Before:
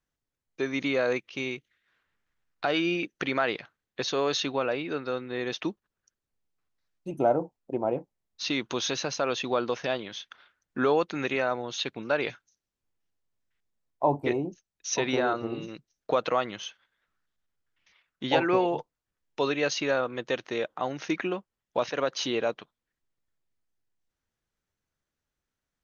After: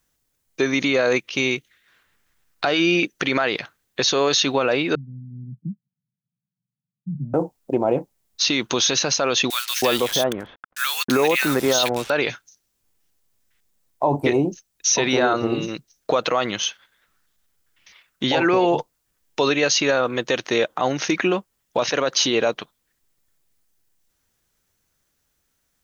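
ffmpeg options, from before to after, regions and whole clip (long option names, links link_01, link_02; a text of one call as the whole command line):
ffmpeg -i in.wav -filter_complex "[0:a]asettb=1/sr,asplit=3[link_01][link_02][link_03];[link_01]atrim=end=4.954[link_04];[link_02]atrim=start=4.95:end=7.34,asetpts=PTS-STARTPTS,afade=type=in:duration=0.004:curve=qsin,afade=type=out:start_time=2.386:duration=0.004:curve=qsin,asuperpass=centerf=160:order=8:qfactor=1.6,aecho=1:1:6.7:0.33,atrim=end_sample=105399[link_05];[link_03]atrim=start=7.336[link_06];[link_04][link_05]acrossfade=duration=0.004:curve1=hsin:curve2=qsin[link_07];[link_07][link_06]acrossfade=duration=0.004:curve1=qsin:curve2=hsin,asettb=1/sr,asplit=3[link_08][link_09][link_10];[link_08]atrim=end=9.504[link_11];[link_09]atrim=start=9.5:end=12.1,asetpts=PTS-STARTPTS,afade=type=in:duration=0.004:curve=qsin,afade=type=out:start_time=2.596:duration=0.004:curve=qsin,highshelf=frequency=2500:gain=5.5,acrusher=bits=6:mix=0:aa=0.5,acrossover=split=1500[link_12][link_13];[link_12]adelay=320[link_14];[link_14][link_13]amix=inputs=2:normalize=0,atrim=end_sample=114660[link_15];[link_10]atrim=start=12.096[link_16];[link_11][link_15]acrossfade=duration=0.004:curve1=hsin:curve2=qsin[link_17];[link_17][link_16]acrossfade=duration=0.004:curve1=qsin:curve2=hsin,highshelf=frequency=5600:gain=12,alimiter=level_in=19dB:limit=-1dB:release=50:level=0:latency=1,volume=-8dB" out.wav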